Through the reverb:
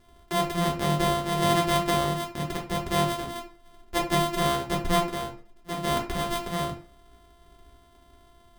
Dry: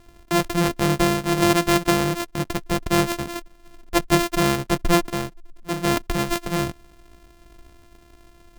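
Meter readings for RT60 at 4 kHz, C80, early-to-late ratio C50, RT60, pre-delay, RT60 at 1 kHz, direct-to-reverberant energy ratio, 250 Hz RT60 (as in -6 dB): 0.30 s, 13.0 dB, 9.0 dB, 0.45 s, 5 ms, 0.45 s, -2.5 dB, 0.40 s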